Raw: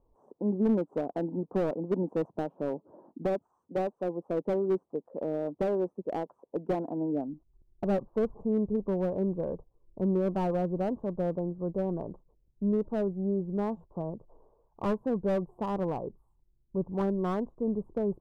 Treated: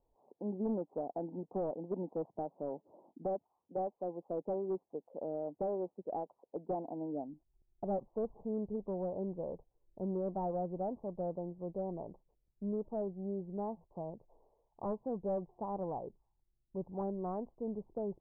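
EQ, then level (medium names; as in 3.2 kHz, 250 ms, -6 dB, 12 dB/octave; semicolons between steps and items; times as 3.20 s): four-pole ladder low-pass 940 Hz, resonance 50%; -1.0 dB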